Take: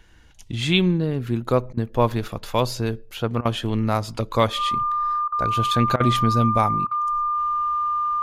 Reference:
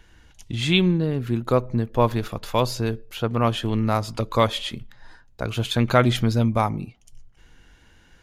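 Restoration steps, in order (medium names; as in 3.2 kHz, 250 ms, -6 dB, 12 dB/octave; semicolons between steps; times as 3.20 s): band-stop 1.2 kHz, Q 30; interpolate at 1.73/3.41/5.28/5.96/6.87 s, 41 ms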